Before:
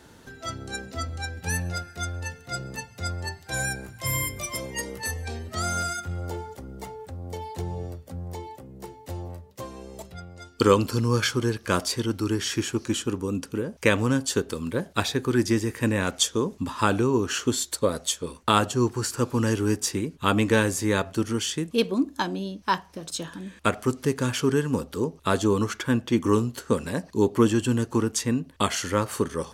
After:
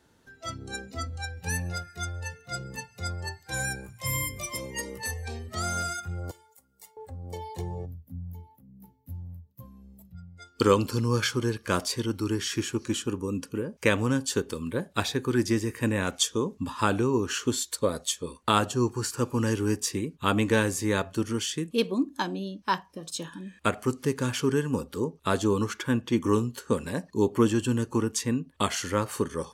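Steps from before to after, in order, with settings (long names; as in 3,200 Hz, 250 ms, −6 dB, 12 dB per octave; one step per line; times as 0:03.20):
0:07.85–0:10.39: gain on a spectral selection 310–11,000 Hz −14 dB
noise reduction from a noise print of the clip's start 10 dB
0:06.31–0:06.97: first-order pre-emphasis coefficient 0.97
level −2.5 dB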